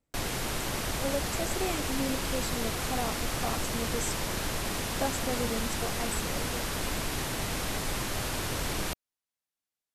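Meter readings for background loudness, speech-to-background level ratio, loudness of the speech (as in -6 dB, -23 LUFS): -32.0 LUFS, -4.5 dB, -36.5 LUFS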